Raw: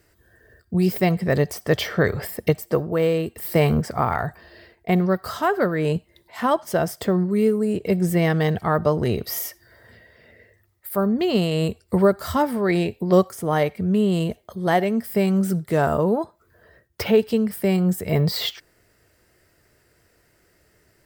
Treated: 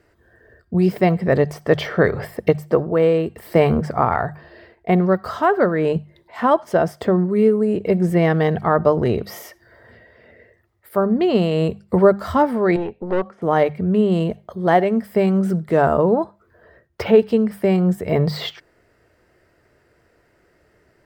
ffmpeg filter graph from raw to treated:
ffmpeg -i in.wav -filter_complex "[0:a]asettb=1/sr,asplit=3[link_01][link_02][link_03];[link_01]atrim=end=12.764[link_04];[link_02]atrim=start=12.76:end=13.42,asetpts=PTS-STARTPTS,afade=type=in:duration=0.004:curve=qsin,afade=type=out:start_time=0.656:duration=0.004:curve=qsin,highpass=180,lowpass=2500,aeval=exprs='(tanh(10*val(0)+0.7)-tanh(0.7))/10':channel_layout=same[link_05];[link_03]atrim=start=13.416[link_06];[link_04][link_05]acrossfade=duration=0.004:curve1=hsin:curve2=qsin[link_07];[link_07][link_06]acrossfade=duration=0.004:curve1=qsin:curve2=hsin,lowpass=frequency=1200:poles=1,lowshelf=frequency=290:gain=-6,bandreject=frequency=50:width_type=h:width=6,bandreject=frequency=100:width_type=h:width=6,bandreject=frequency=150:width_type=h:width=6,bandreject=frequency=200:width_type=h:width=6,volume=7dB" out.wav

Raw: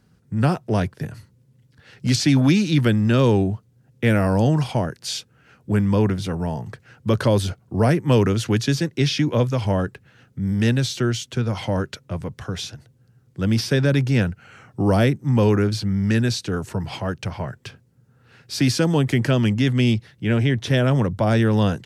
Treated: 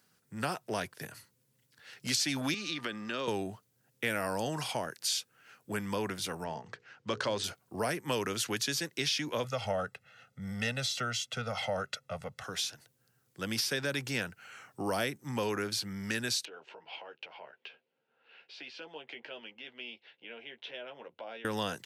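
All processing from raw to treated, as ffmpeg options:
ffmpeg -i in.wav -filter_complex "[0:a]asettb=1/sr,asplit=3[link_01][link_02][link_03];[link_01]atrim=end=2.544[link_04];[link_02]atrim=start=2.54:end=3.28,asetpts=PTS-STARTPTS,afade=type=in:duration=0.004:curve=qsin,afade=type=out:start_time=0.736:duration=0.004:curve=qsin,acrossover=split=160 6100:gain=0.0891 1 0.112[link_05][link_06][link_07];[link_05][link_06][link_07]amix=inputs=3:normalize=0,acompressor=threshold=-22dB:ratio=4:attack=3.2:release=140:knee=1:detection=peak,aeval=exprs='val(0)+0.00398*sin(2*PI*1200*n/s)':channel_layout=same[link_08];[link_03]atrim=start=3.276[link_09];[link_04][link_08]acrossfade=duration=0.004:curve1=hsin:curve2=qsin[link_10];[link_10][link_09]acrossfade=duration=0.004:curve1=qsin:curve2=hsin,asettb=1/sr,asplit=3[link_11][link_12][link_13];[link_11]atrim=end=6.444[link_14];[link_12]atrim=start=6.44:end=7.44,asetpts=PTS-STARTPTS,afade=type=in:duration=0.004:curve=qsin,afade=type=out:start_time=0.996:duration=0.004:curve=qsin,bandreject=frequency=60:width_type=h:width=6,bandreject=frequency=120:width_type=h:width=6,bandreject=frequency=180:width_type=h:width=6,bandreject=frequency=240:width_type=h:width=6,bandreject=frequency=300:width_type=h:width=6,bandreject=frequency=360:width_type=h:width=6,bandreject=frequency=420:width_type=h:width=6,bandreject=frequency=480:width_type=h:width=6,adynamicsmooth=sensitivity=7:basefreq=5300,lowpass=frequency=7400:width=0.5412,lowpass=frequency=7400:width=1.3066[link_15];[link_13]atrim=start=7.436[link_16];[link_14][link_15]acrossfade=duration=0.004:curve1=hsin:curve2=qsin[link_17];[link_17][link_16]acrossfade=duration=0.004:curve1=qsin:curve2=hsin,asettb=1/sr,asplit=3[link_18][link_19][link_20];[link_18]atrim=end=9.444[link_21];[link_19]atrim=start=9.44:end=12.44,asetpts=PTS-STARTPTS,afade=type=in:duration=0.004:curve=qsin,afade=type=out:start_time=2.996:duration=0.004:curve=qsin,aemphasis=mode=reproduction:type=50kf,aecho=1:1:1.5:0.91,atrim=end_sample=132300[link_22];[link_20]atrim=start=12.436[link_23];[link_21][link_22]acrossfade=duration=0.004:curve1=hsin:curve2=qsin[link_24];[link_24][link_23]acrossfade=duration=0.004:curve1=qsin:curve2=hsin,asettb=1/sr,asplit=3[link_25][link_26][link_27];[link_25]atrim=end=16.454[link_28];[link_26]atrim=start=16.45:end=21.45,asetpts=PTS-STARTPTS,afade=type=in:duration=0.004:curve=qsin,afade=type=out:start_time=4.996:duration=0.004:curve=qsin,acompressor=threshold=-40dB:ratio=2:attack=3.2:release=140:knee=1:detection=peak,highpass=420,equalizer=frequency=480:width_type=q:width=4:gain=3,equalizer=frequency=1200:width_type=q:width=4:gain=-9,equalizer=frequency=1800:width_type=q:width=4:gain=-7,equalizer=frequency=2800:width_type=q:width=4:gain=4,lowpass=frequency=3200:width=0.5412,lowpass=frequency=3200:width=1.3066,asplit=2[link_29][link_30];[link_30]adelay=13,volume=-6.5dB[link_31];[link_29][link_31]amix=inputs=2:normalize=0,atrim=end_sample=220500[link_32];[link_27]atrim=start=21.446[link_33];[link_28][link_32]acrossfade=duration=0.004:curve1=hsin:curve2=qsin[link_34];[link_34][link_33]acrossfade=duration=0.004:curve1=qsin:curve2=hsin,highpass=frequency=1100:poles=1,highshelf=frequency=10000:gain=11.5,acompressor=threshold=-29dB:ratio=2,volume=-2dB" out.wav

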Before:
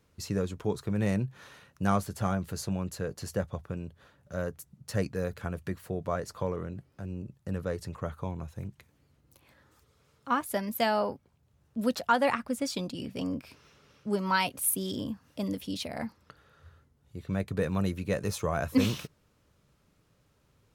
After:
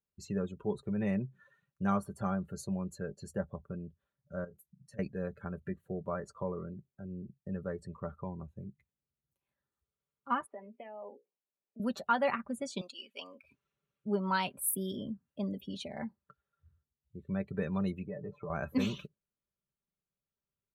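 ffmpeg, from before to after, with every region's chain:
ffmpeg -i in.wav -filter_complex "[0:a]asettb=1/sr,asplit=3[link_01][link_02][link_03];[link_01]atrim=end=4.444[link_04];[link_02]atrim=start=4.44:end=4.99,asetpts=PTS-STARTPTS,afade=type=in:duration=0.004:curve=qsin,afade=type=out:start_time=0.546:duration=0.004:curve=qsin,asplit=2[link_05][link_06];[link_06]adelay=31,volume=-13dB[link_07];[link_05][link_07]amix=inputs=2:normalize=0,atrim=end_sample=24255,acompressor=threshold=-41dB:ratio=5:attack=3.2:release=140:knee=1:detection=peak,bandreject=frequency=50:width_type=h:width=6,bandreject=frequency=100:width_type=h:width=6,bandreject=frequency=150:width_type=h:width=6,bandreject=frequency=200:width_type=h:width=6,bandreject=frequency=250:width_type=h:width=6,bandreject=frequency=300:width_type=h:width=6,bandreject=frequency=350:width_type=h:width=6,bandreject=frequency=400:width_type=h:width=6[link_08];[link_03]atrim=start=4.986[link_09];[link_04][link_08]acrossfade=duration=0.004:curve1=hsin:curve2=qsin[link_10];[link_10][link_09]acrossfade=duration=0.004:curve1=qsin:curve2=hsin,asettb=1/sr,asplit=3[link_11][link_12][link_13];[link_11]atrim=end=10.464[link_14];[link_12]atrim=start=10.46:end=11.8,asetpts=PTS-STARTPTS,afade=type=in:duration=0.004:curve=qsin,afade=type=out:start_time=1.336:duration=0.004:curve=qsin,bandreject=frequency=60:width_type=h:width=6,bandreject=frequency=120:width_type=h:width=6,bandreject=frequency=180:width_type=h:width=6,bandreject=frequency=240:width_type=h:width=6,bandreject=frequency=300:width_type=h:width=6,bandreject=frequency=360:width_type=h:width=6,bandreject=frequency=420:width_type=h:width=6,bandreject=frequency=480:width_type=h:width=6,bandreject=frequency=540:width_type=h:width=6,acompressor=threshold=-40dB:ratio=8:attack=3.2:release=140:knee=1:detection=peak,highpass=frequency=240:width=0.5412,highpass=frequency=240:width=1.3066,equalizer=frequency=480:width_type=q:width=4:gain=5,equalizer=frequency=710:width_type=q:width=4:gain=5,equalizer=frequency=1500:width_type=q:width=4:gain=-5,equalizer=frequency=2400:width_type=q:width=4:gain=7,lowpass=frequency=3200:width=0.5412,lowpass=frequency=3200:width=1.3066[link_15];[link_13]atrim=start=11.796[link_16];[link_14][link_15]acrossfade=duration=0.004:curve1=hsin:curve2=qsin[link_17];[link_17][link_16]acrossfade=duration=0.004:curve1=qsin:curve2=hsin,asettb=1/sr,asplit=3[link_18][link_19][link_20];[link_18]atrim=end=12.814[link_21];[link_19]atrim=start=12.81:end=13.43,asetpts=PTS-STARTPTS,afade=type=in:duration=0.004:curve=qsin,afade=type=out:start_time=0.616:duration=0.004:curve=qsin,highpass=1000,acontrast=61[link_22];[link_20]atrim=start=13.426[link_23];[link_21][link_22]acrossfade=duration=0.004:curve1=hsin:curve2=qsin[link_24];[link_24][link_23]acrossfade=duration=0.004:curve1=qsin:curve2=hsin,asettb=1/sr,asplit=3[link_25][link_26][link_27];[link_25]atrim=end=18.064[link_28];[link_26]atrim=start=18.06:end=18.5,asetpts=PTS-STARTPTS,afade=type=in:duration=0.004:curve=qsin,afade=type=out:start_time=0.436:duration=0.004:curve=qsin,lowpass=1600,aecho=1:1:6.7:0.6,atrim=end_sample=19404,acompressor=threshold=-33dB:ratio=4:attack=3.2:release=140:knee=1:detection=peak[link_29];[link_27]atrim=start=18.496[link_30];[link_28][link_29]acrossfade=duration=0.004:curve1=hsin:curve2=qsin[link_31];[link_31][link_30]acrossfade=duration=0.004:curve1=qsin:curve2=hsin,afftdn=noise_reduction=24:noise_floor=-44,equalizer=frequency=5100:width=5.5:gain=-13.5,aecho=1:1:5.1:0.5,volume=-5.5dB" out.wav

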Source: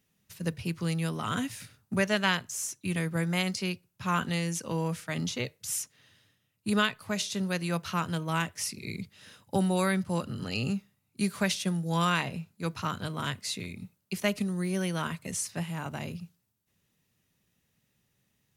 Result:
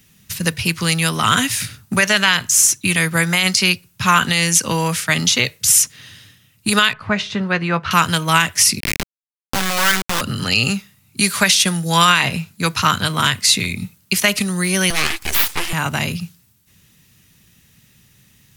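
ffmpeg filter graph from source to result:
ffmpeg -i in.wav -filter_complex "[0:a]asettb=1/sr,asplit=3[link_01][link_02][link_03];[link_01]atrim=end=6.934[link_04];[link_02]atrim=start=6.93:end=7.91,asetpts=PTS-STARTPTS,afade=type=in:duration=0.004:curve=qsin,afade=type=out:start_time=0.976:duration=0.004:curve=qsin,lowpass=1700,asplit=2[link_05][link_06];[link_06]adelay=14,volume=-13dB[link_07];[link_05][link_07]amix=inputs=2:normalize=0,atrim=end_sample=43218[link_08];[link_03]atrim=start=7.906[link_09];[link_04][link_08]acrossfade=duration=0.004:curve1=hsin:curve2=qsin[link_10];[link_10][link_09]acrossfade=duration=0.004:curve1=qsin:curve2=hsin,asettb=1/sr,asplit=3[link_11][link_12][link_13];[link_11]atrim=end=8.804[link_14];[link_12]atrim=start=8.8:end=10.21,asetpts=PTS-STARTPTS,afade=type=in:duration=0.004:curve=qsin,afade=type=out:start_time=1.406:duration=0.004:curve=qsin,acompressor=threshold=-35dB:ratio=2:attack=3.2:release=140:knee=1:detection=peak,lowpass=frequency=1500:width_type=q:width=3.4,acrusher=bits=3:dc=4:mix=0:aa=0.000001[link_15];[link_13]atrim=start=10.206[link_16];[link_14][link_15]acrossfade=duration=0.004:curve1=hsin:curve2=qsin[link_17];[link_17][link_16]acrossfade=duration=0.004:curve1=qsin:curve2=hsin,asettb=1/sr,asplit=3[link_18][link_19][link_20];[link_18]atrim=end=14.904[link_21];[link_19]atrim=start=14.9:end=15.73,asetpts=PTS-STARTPTS,afade=type=in:duration=0.004:curve=qsin,afade=type=out:start_time=0.826:duration=0.004:curve=qsin,highpass=160,aeval=exprs='abs(val(0))':channel_layout=same[link_22];[link_20]atrim=start=15.726[link_23];[link_21][link_22]acrossfade=duration=0.004:curve1=hsin:curve2=qsin[link_24];[link_24][link_23]acrossfade=duration=0.004:curve1=qsin:curve2=hsin,equalizer=frequency=570:width_type=o:width=2.1:gain=-9.5,acrossover=split=460[link_25][link_26];[link_25]acompressor=threshold=-47dB:ratio=3[link_27];[link_27][link_26]amix=inputs=2:normalize=0,alimiter=level_in=23.5dB:limit=-1dB:release=50:level=0:latency=1,volume=-1dB" out.wav

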